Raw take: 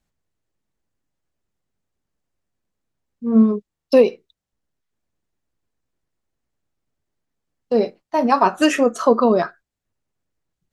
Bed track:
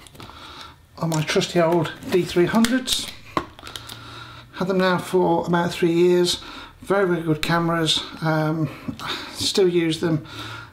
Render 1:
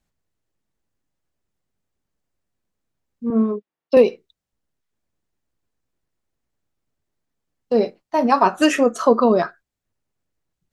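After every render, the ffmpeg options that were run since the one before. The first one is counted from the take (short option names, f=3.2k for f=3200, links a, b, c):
-filter_complex "[0:a]asettb=1/sr,asplit=3[a][b][c];[a]atrim=end=3.304[d];[b]atrim=start=3.3:end=3.97,asetpts=PTS-STARTPTS,afade=t=in:d=0.004:c=qsin,afade=t=out:st=0.666:d=0.004:c=qsin,highpass=280,lowpass=2.9k[e];[c]atrim=start=3.966[f];[d][e]acrossfade=d=0.004:c1=hsin:c2=qsin[g];[g][f]acrossfade=d=0.004:c1=qsin:c2=hsin"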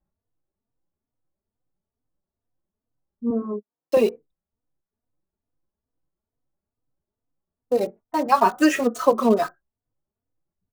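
-filter_complex "[0:a]acrossover=split=1400[a][b];[b]acrusher=bits=5:mix=0:aa=0.000001[c];[a][c]amix=inputs=2:normalize=0,asplit=2[d][e];[e]adelay=3.3,afreqshift=2.3[f];[d][f]amix=inputs=2:normalize=1"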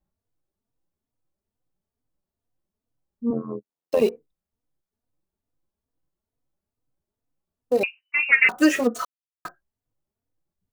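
-filter_complex "[0:a]asettb=1/sr,asplit=3[a][b][c];[a]atrim=end=3.334[d];[b]atrim=start=3.33:end=4.02,asetpts=PTS-STARTPTS,afade=t=in:d=0.004:c=qsin,afade=t=out:st=0.686:d=0.004:c=qsin,tremolo=f=85:d=0.788[e];[c]atrim=start=4.016[f];[d][e]acrossfade=d=0.004:c1=hsin:c2=qsin[g];[g][f]acrossfade=d=0.004:c1=qsin:c2=hsin,asettb=1/sr,asplit=3[h][i][j];[h]atrim=end=7.834[k];[i]atrim=start=7.83:end=8.49,asetpts=PTS-STARTPTS,afade=t=in:d=0.004:c=qsin,afade=t=out:st=0.656:d=0.004:c=qsin,lowpass=f=2.6k:t=q:w=0.5098,lowpass=f=2.6k:t=q:w=0.6013,lowpass=f=2.6k:t=q:w=0.9,lowpass=f=2.6k:t=q:w=2.563,afreqshift=-3000[l];[j]atrim=start=8.486[m];[k][l]acrossfade=d=0.004:c1=hsin:c2=qsin[n];[n][m]acrossfade=d=0.004:c1=qsin:c2=hsin,asplit=3[o][p][q];[o]atrim=end=9.05,asetpts=PTS-STARTPTS,afade=t=out:st=9.046:d=0.004:c=hsin[r];[p]atrim=start=9.05:end=9.45,asetpts=PTS-STARTPTS,volume=0[s];[q]atrim=start=9.45,asetpts=PTS-STARTPTS,afade=t=in:d=0.004:c=hsin[t];[r][s][t]concat=n=3:v=0:a=1"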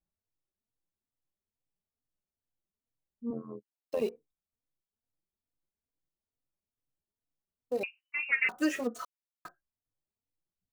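-af "volume=-11.5dB"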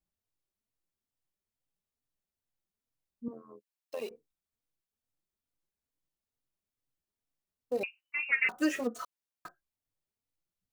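-filter_complex "[0:a]asettb=1/sr,asplit=3[a][b][c];[a]atrim=end=3.284[d];[b]atrim=start=3.28:end=4.11,asetpts=PTS-STARTPTS,afade=t=in:d=0.004:c=qsin,afade=t=out:st=0.826:d=0.004:c=qsin,highpass=f=990:p=1[e];[c]atrim=start=4.106[f];[d][e]acrossfade=d=0.004:c1=hsin:c2=qsin[g];[g][f]acrossfade=d=0.004:c1=qsin:c2=hsin"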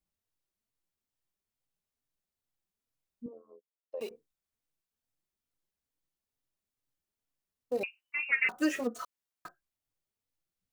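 -filter_complex "[0:a]asettb=1/sr,asplit=3[a][b][c];[a]atrim=end=3.264[d];[b]atrim=start=3.26:end=4.01,asetpts=PTS-STARTPTS,afade=t=in:d=0.004:c=qsin,afade=t=out:st=0.746:d=0.004:c=qsin,bandpass=f=510:t=q:w=2.4[e];[c]atrim=start=4.006[f];[d][e]acrossfade=d=0.004:c1=hsin:c2=qsin[g];[g][f]acrossfade=d=0.004:c1=qsin:c2=hsin"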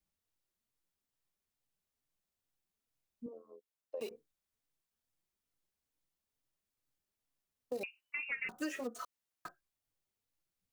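-filter_complex "[0:a]acrossover=split=340|3600[a][b][c];[a]acompressor=threshold=-46dB:ratio=4[d];[b]acompressor=threshold=-40dB:ratio=4[e];[c]acompressor=threshold=-51dB:ratio=4[f];[d][e][f]amix=inputs=3:normalize=0"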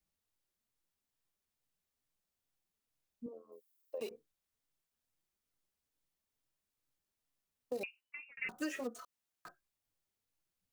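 -filter_complex "[0:a]asettb=1/sr,asplit=3[a][b][c];[a]atrim=end=3.524[d];[b]atrim=start=3.52:end=3.98,asetpts=PTS-STARTPTS,afade=t=in:d=0.004:c=qsin,afade=t=out:st=0.456:d=0.004:c=qsin,aemphasis=mode=production:type=50fm[e];[c]atrim=start=3.976[f];[d][e]acrossfade=d=0.004:c1=hsin:c2=qsin[g];[g][f]acrossfade=d=0.004:c1=qsin:c2=hsin,asettb=1/sr,asplit=3[h][i][j];[h]atrim=end=8.914[k];[i]atrim=start=8.91:end=9.47,asetpts=PTS-STARTPTS,afade=t=in:d=0.004:c=qsin,afade=t=out:st=0.556:d=0.004:c=qsin,acompressor=threshold=-48dB:ratio=6:attack=3.2:release=140:knee=1:detection=peak[l];[j]atrim=start=9.466[m];[k][l]acrossfade=d=0.004:c1=hsin:c2=qsin[n];[n][m]acrossfade=d=0.004:c1=qsin:c2=hsin,asplit=2[o][p];[o]atrim=end=8.37,asetpts=PTS-STARTPTS,afade=t=out:st=7.83:d=0.54[q];[p]atrim=start=8.37,asetpts=PTS-STARTPTS,afade=t=in:d=0.004:c=hsin[r];[q][r]concat=n=2:v=0:a=1"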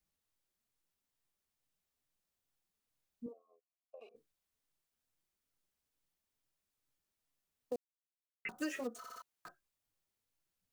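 -filter_complex "[0:a]asplit=3[a][b][c];[a]afade=t=out:st=3.32:d=0.02[d];[b]asplit=3[e][f][g];[e]bandpass=f=730:t=q:w=8,volume=0dB[h];[f]bandpass=f=1.09k:t=q:w=8,volume=-6dB[i];[g]bandpass=f=2.44k:t=q:w=8,volume=-9dB[j];[h][i][j]amix=inputs=3:normalize=0,afade=t=in:st=3.32:d=0.02,afade=t=out:st=4.14:d=0.02[k];[c]afade=t=in:st=4.14:d=0.02[l];[d][k][l]amix=inputs=3:normalize=0,asplit=7[m][n][o][p][q][r][s];[m]atrim=end=7.76,asetpts=PTS-STARTPTS,afade=t=out:st=7.756:d=0.004:c=hsin[t];[n]atrim=start=7.76:end=8.45,asetpts=PTS-STARTPTS,volume=0[u];[o]atrim=start=8.45:end=9.042,asetpts=PTS-STARTPTS,afade=t=in:d=0.004:c=hsin[v];[p]atrim=start=8.978:end=9.042[w];[q]atrim=start=8.978:end=9.042[x];[r]atrim=start=8.978:end=9.042[y];[s]atrim=start=9.218[z];[t][u][v]concat=n=3:v=0:a=1[aa];[aa][w]acrossfade=d=0.004:c1=hsin:c2=hsin[ab];[ab][x]acrossfade=d=0.004:c1=hsin:c2=hsin[ac];[ac][y]acrossfade=d=0.004:c1=hsin:c2=hsin[ad];[ad][z]acrossfade=d=0.004:c1=hsin:c2=hsin"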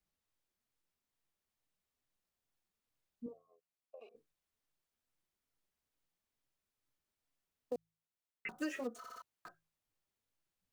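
-af "highshelf=f=4.7k:g=-5.5,bandreject=f=54.12:t=h:w=4,bandreject=f=108.24:t=h:w=4,bandreject=f=162.36:t=h:w=4"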